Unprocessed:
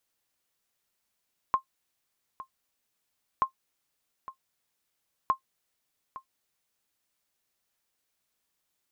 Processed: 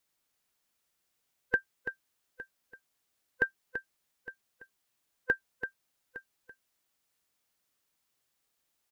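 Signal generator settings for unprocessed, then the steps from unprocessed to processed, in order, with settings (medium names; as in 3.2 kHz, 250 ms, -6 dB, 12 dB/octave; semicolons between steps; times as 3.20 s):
sonar ping 1.06 kHz, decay 0.10 s, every 1.88 s, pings 3, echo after 0.86 s, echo -16.5 dB -14.5 dBFS
split-band scrambler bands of 500 Hz; delay 335 ms -9 dB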